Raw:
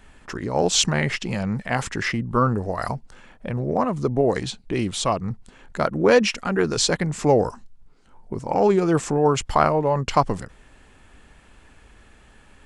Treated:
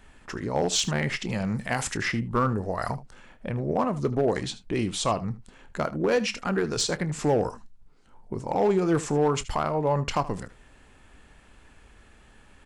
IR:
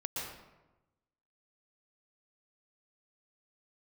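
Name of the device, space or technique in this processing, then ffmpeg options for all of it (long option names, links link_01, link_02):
limiter into clipper: -filter_complex "[0:a]asettb=1/sr,asplit=3[link_01][link_02][link_03];[link_01]atrim=end=1.444[link_04];[link_02]atrim=start=1.44:end=1.95,asetpts=PTS-STARTPTS,afade=type=in:duration=0.004:curve=qsin,afade=type=out:start_time=0.506:duration=0.004:curve=qsin,aemphasis=mode=production:type=50kf[link_05];[link_03]atrim=start=1.946[link_06];[link_04][link_05]acrossfade=duration=0.004:curve1=hsin:curve2=qsin[link_07];[link_07][link_06]acrossfade=duration=0.004:curve1=qsin:curve2=hsin,alimiter=limit=-10dB:level=0:latency=1:release=248,asoftclip=type=hard:threshold=-13dB,aecho=1:1:27|77:0.15|0.141,volume=-3dB"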